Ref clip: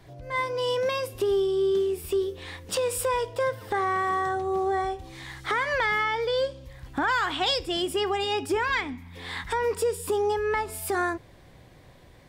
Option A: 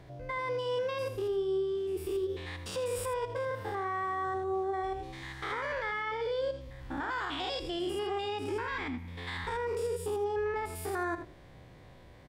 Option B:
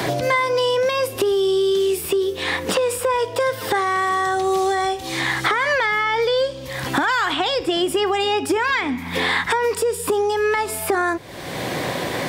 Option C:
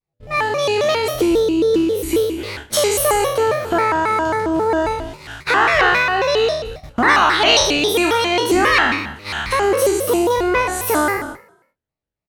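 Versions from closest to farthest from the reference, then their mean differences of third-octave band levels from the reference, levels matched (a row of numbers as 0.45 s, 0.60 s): A, B, C; 4.5 dB, 6.0 dB, 8.5 dB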